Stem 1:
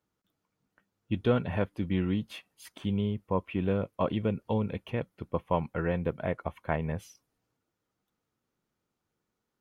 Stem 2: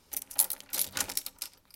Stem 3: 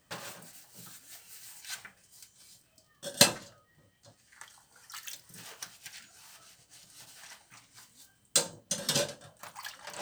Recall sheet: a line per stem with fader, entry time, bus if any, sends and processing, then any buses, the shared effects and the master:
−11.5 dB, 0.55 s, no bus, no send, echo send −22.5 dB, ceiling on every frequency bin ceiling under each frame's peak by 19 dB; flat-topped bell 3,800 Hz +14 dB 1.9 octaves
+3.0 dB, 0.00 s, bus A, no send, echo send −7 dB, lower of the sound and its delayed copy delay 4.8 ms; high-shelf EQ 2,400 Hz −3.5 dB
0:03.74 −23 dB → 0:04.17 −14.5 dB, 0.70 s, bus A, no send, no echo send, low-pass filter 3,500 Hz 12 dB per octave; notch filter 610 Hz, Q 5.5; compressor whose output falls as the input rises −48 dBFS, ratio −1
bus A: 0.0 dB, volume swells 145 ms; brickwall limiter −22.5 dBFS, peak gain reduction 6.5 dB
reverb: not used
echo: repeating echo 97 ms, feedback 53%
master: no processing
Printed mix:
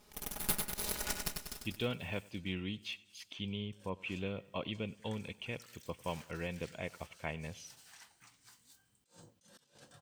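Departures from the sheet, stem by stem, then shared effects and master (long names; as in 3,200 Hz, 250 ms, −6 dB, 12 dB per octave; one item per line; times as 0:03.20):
stem 1: missing ceiling on every frequency bin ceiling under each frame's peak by 19 dB
stem 3: missing low-pass filter 3,500 Hz 12 dB per octave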